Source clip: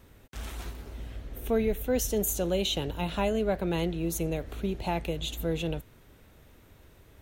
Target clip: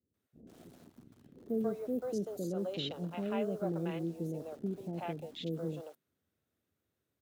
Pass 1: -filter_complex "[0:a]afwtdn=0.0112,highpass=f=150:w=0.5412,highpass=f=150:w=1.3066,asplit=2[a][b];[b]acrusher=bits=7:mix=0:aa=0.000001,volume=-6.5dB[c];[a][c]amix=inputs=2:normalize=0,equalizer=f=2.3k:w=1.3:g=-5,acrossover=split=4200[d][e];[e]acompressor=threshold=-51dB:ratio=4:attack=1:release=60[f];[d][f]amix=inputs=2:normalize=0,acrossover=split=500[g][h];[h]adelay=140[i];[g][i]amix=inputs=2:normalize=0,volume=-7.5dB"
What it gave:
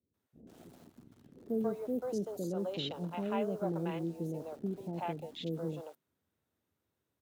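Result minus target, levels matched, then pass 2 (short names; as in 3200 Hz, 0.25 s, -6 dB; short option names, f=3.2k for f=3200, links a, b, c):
1000 Hz band +3.5 dB
-filter_complex "[0:a]afwtdn=0.0112,highpass=f=150:w=0.5412,highpass=f=150:w=1.3066,equalizer=f=930:w=3.6:g=-7,asplit=2[a][b];[b]acrusher=bits=7:mix=0:aa=0.000001,volume=-6.5dB[c];[a][c]amix=inputs=2:normalize=0,equalizer=f=2.3k:w=1.3:g=-5,acrossover=split=4200[d][e];[e]acompressor=threshold=-51dB:ratio=4:attack=1:release=60[f];[d][f]amix=inputs=2:normalize=0,acrossover=split=500[g][h];[h]adelay=140[i];[g][i]amix=inputs=2:normalize=0,volume=-7.5dB"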